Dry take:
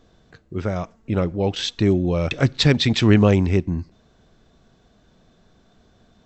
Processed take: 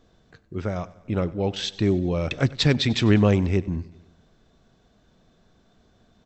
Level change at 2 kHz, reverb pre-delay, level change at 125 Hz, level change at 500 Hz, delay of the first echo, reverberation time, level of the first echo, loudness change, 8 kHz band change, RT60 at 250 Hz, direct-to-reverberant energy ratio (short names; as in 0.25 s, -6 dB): -3.5 dB, none, -3.5 dB, -3.5 dB, 97 ms, none, -20.5 dB, -3.5 dB, n/a, none, none